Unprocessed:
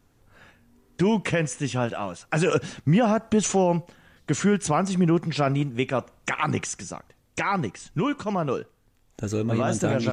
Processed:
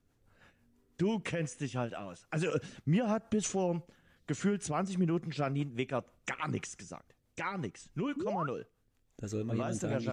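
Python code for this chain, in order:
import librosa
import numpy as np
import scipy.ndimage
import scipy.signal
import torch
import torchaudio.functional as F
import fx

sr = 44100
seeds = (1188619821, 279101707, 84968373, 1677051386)

y = fx.rotary(x, sr, hz=6.0)
y = fx.spec_paint(y, sr, seeds[0], shape='rise', start_s=8.16, length_s=0.31, low_hz=250.0, high_hz=1500.0, level_db=-27.0)
y = y * 10.0 ** (-8.5 / 20.0)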